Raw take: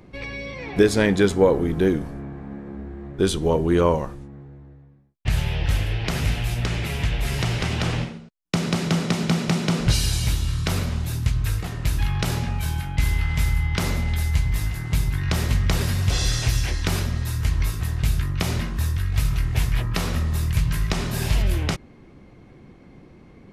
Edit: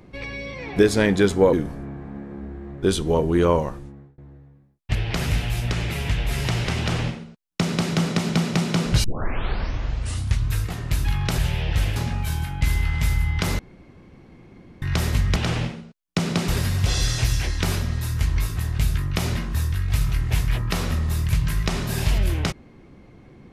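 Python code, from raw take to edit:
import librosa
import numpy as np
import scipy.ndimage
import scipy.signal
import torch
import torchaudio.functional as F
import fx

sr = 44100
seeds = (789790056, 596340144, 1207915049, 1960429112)

y = fx.edit(x, sr, fx.cut(start_s=1.53, length_s=0.36),
    fx.fade_out_span(start_s=4.17, length_s=0.37, curve='qsin'),
    fx.move(start_s=5.31, length_s=0.58, to_s=12.32),
    fx.duplicate(start_s=7.73, length_s=1.12, to_s=15.72),
    fx.tape_start(start_s=9.98, length_s=1.45),
    fx.room_tone_fill(start_s=13.95, length_s=1.23), tone=tone)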